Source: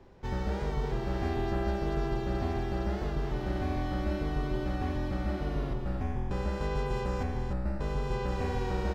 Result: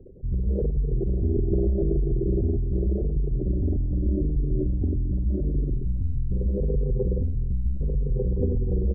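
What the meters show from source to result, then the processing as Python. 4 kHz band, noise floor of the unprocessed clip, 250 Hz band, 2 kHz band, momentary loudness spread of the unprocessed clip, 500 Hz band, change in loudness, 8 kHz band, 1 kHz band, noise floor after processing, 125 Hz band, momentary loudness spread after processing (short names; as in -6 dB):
under -35 dB, -35 dBFS, +5.5 dB, under -40 dB, 3 LU, +4.0 dB, +6.5 dB, n/a, under -20 dB, -27 dBFS, +8.5 dB, 4 LU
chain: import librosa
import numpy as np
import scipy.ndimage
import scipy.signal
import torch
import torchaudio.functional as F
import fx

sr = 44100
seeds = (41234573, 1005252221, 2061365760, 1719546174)

y = fx.envelope_sharpen(x, sr, power=3.0)
y = fx.low_shelf_res(y, sr, hz=670.0, db=10.5, q=3.0)
y = y * librosa.db_to_amplitude(-3.0)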